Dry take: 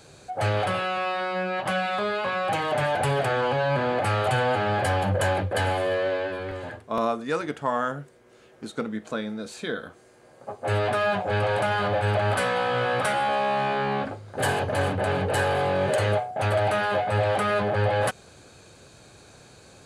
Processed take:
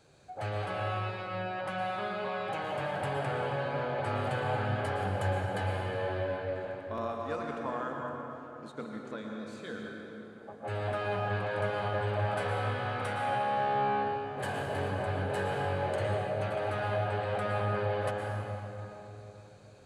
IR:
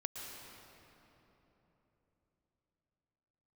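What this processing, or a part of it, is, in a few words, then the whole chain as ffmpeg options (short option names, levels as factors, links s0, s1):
swimming-pool hall: -filter_complex "[1:a]atrim=start_sample=2205[s0];[0:a][s0]afir=irnorm=-1:irlink=0,highshelf=f=4800:g=-7,asettb=1/sr,asplit=3[s1][s2][s3];[s1]atrim=end=3.204[s4];[s2]atrim=start=3.2:end=4.08,asetpts=PTS-STARTPTS,afade=t=in:d=0.004:c=qsin,afade=t=out:st=0.876:d=0.004:c=qsin,lowpass=f=11000:w=0.5412,lowpass=f=11000:w=1.3066[s5];[s3]atrim=start=4.076[s6];[s4][s5]acrossfade=d=0.004:c1=hsin:c2=qsin[s7];[s7][s6]acrossfade=d=0.004:c1=qsin:c2=hsin,volume=0.398"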